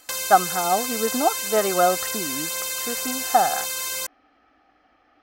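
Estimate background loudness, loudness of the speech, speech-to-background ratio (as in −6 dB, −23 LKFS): −25.5 LKFS, −23.0 LKFS, 2.5 dB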